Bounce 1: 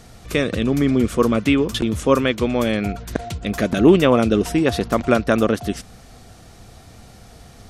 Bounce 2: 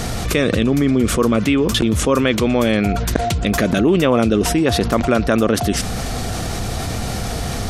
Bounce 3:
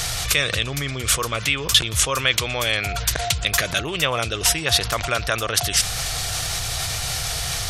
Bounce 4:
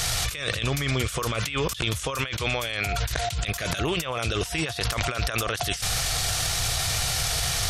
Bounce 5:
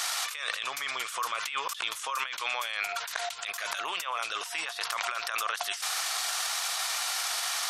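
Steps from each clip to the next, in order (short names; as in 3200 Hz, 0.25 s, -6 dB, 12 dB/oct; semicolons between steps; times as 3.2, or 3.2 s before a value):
fast leveller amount 70%; gain -4.5 dB
EQ curve 150 Hz 0 dB, 210 Hz -18 dB, 610 Hz -1 dB, 3300 Hz +12 dB; gain -6.5 dB
negative-ratio compressor -28 dBFS, ratio -1
resonant high-pass 1000 Hz, resonance Q 2.1; gain -5 dB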